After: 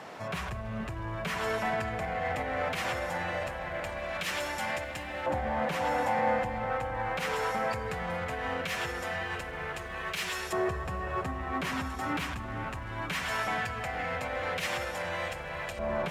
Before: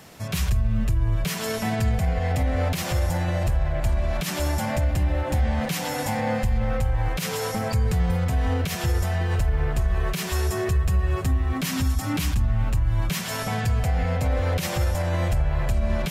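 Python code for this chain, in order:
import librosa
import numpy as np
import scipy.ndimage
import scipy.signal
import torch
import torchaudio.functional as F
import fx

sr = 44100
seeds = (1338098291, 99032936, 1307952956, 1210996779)

p1 = fx.law_mismatch(x, sr, coded='mu')
p2 = fx.filter_lfo_bandpass(p1, sr, shape='saw_up', hz=0.19, low_hz=890.0, high_hz=2900.0, q=0.75)
p3 = np.clip(10.0 ** (35.0 / 20.0) * p2, -1.0, 1.0) / 10.0 ** (35.0 / 20.0)
p4 = p2 + (p3 * 10.0 ** (-9.0 / 20.0))
p5 = fx.dynamic_eq(p4, sr, hz=4800.0, q=0.95, threshold_db=-50.0, ratio=4.0, max_db=-5)
p6 = p5 + fx.echo_bbd(p5, sr, ms=468, stages=2048, feedback_pct=71, wet_db=-10.0, dry=0)
y = fx.rev_schroeder(p6, sr, rt60_s=3.7, comb_ms=33, drr_db=18.5)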